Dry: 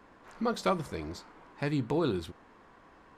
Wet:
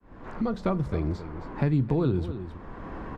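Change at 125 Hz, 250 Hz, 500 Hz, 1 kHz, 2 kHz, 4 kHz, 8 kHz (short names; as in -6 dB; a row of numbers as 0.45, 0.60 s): +10.5 dB, +5.5 dB, +2.0 dB, -1.0 dB, -1.0 dB, n/a, under -10 dB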